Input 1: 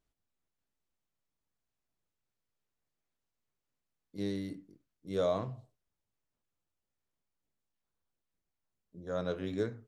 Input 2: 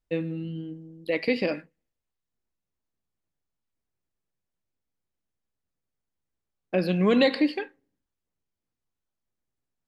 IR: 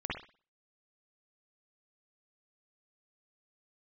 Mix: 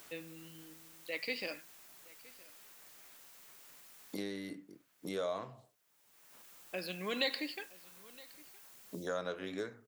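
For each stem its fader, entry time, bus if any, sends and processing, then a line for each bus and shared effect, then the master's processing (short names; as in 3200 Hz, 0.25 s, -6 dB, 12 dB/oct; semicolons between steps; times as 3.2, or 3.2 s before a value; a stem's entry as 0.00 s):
+0.5 dB, 0.00 s, no send, no echo send, three-band squash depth 100%
-12.5 dB, 0.00 s, no send, echo send -22.5 dB, dry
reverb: off
echo: echo 0.967 s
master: tilt +4 dB/oct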